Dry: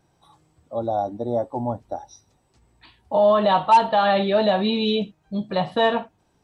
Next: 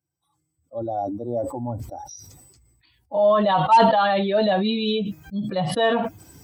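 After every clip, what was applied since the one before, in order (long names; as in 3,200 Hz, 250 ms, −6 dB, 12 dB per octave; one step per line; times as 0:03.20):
spectral dynamics exaggerated over time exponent 1.5
high-pass filter 81 Hz 24 dB per octave
level that may fall only so fast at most 35 dB per second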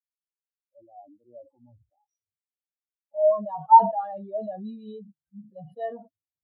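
every bin expanded away from the loudest bin 2.5 to 1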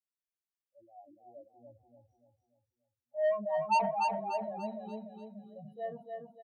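soft clipping −16.5 dBFS, distortion −6 dB
on a send: repeating echo 292 ms, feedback 43%, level −4 dB
on the sum: level −6.5 dB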